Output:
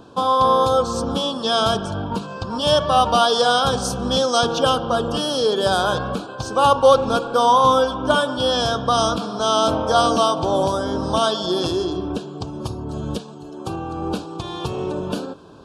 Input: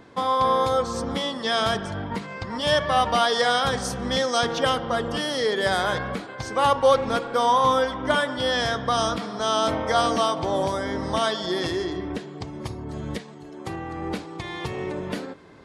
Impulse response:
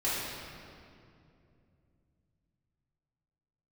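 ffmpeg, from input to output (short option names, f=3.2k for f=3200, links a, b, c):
-af "asuperstop=centerf=2000:order=4:qfactor=1.7,volume=5dB"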